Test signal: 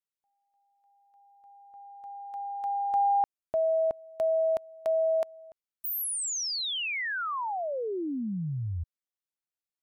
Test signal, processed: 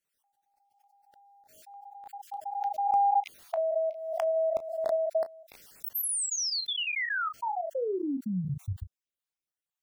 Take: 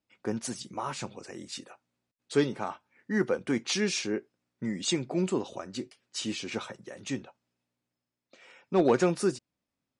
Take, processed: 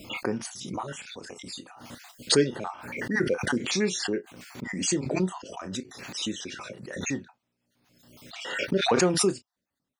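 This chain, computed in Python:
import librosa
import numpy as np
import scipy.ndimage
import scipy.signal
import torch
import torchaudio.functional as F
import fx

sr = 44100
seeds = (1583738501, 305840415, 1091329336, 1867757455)

y = fx.spec_dropout(x, sr, seeds[0], share_pct=42)
y = fx.room_early_taps(y, sr, ms=(21, 33), db=(-14.5, -13.5))
y = fx.pre_swell(y, sr, db_per_s=51.0)
y = y * librosa.db_to_amplitude(1.5)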